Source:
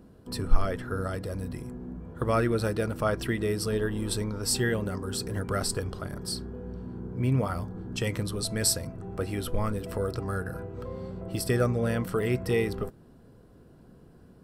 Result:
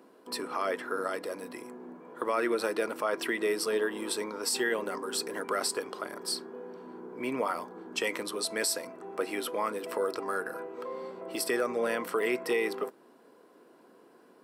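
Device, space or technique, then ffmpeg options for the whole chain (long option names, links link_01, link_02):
laptop speaker: -af "highpass=frequency=300:width=0.5412,highpass=frequency=300:width=1.3066,equalizer=frequency=1000:width_type=o:width=0.4:gain=6.5,equalizer=frequency=2200:width_type=o:width=0.59:gain=5,alimiter=limit=-20dB:level=0:latency=1:release=60,volume=1dB"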